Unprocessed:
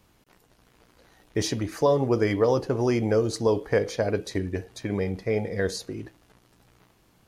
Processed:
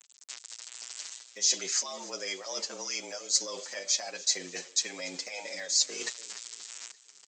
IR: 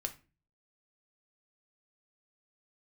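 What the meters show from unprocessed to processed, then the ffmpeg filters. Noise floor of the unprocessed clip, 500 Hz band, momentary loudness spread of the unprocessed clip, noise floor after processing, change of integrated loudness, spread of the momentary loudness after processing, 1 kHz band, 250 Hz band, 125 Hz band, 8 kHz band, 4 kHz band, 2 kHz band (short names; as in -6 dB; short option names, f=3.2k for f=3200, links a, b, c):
-62 dBFS, -18.5 dB, 10 LU, -59 dBFS, -5.0 dB, 16 LU, -12.0 dB, -21.5 dB, under -30 dB, +12.5 dB, +8.0 dB, -4.0 dB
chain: -filter_complex "[0:a]acontrast=56,lowshelf=f=79:g=-3,aresample=16000,aeval=exprs='sgn(val(0))*max(abs(val(0))-0.00355,0)':c=same,aresample=44100,alimiter=limit=-18dB:level=0:latency=1:release=248,aemphasis=mode=production:type=riaa,areverse,acompressor=threshold=-40dB:ratio=12,areverse,crystalizer=i=9:c=0,afreqshift=84,aecho=1:1:290|580|870|1160:0.1|0.049|0.024|0.0118,asplit=2[a][b];[b]adelay=7.3,afreqshift=-1.4[c];[a][c]amix=inputs=2:normalize=1,volume=3dB"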